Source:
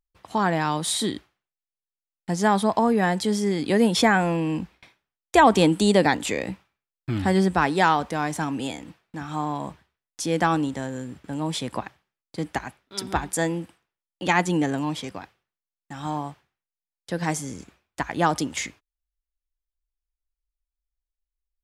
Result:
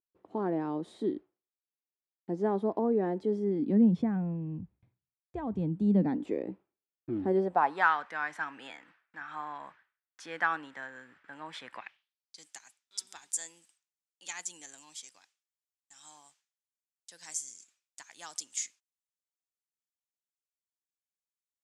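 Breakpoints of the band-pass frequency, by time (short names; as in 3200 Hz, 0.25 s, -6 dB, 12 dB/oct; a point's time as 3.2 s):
band-pass, Q 2.6
3.33 s 360 Hz
4.39 s 110 Hz
5.68 s 110 Hz
6.33 s 360 Hz
7.28 s 360 Hz
7.91 s 1600 Hz
11.66 s 1600 Hz
12.46 s 7200 Hz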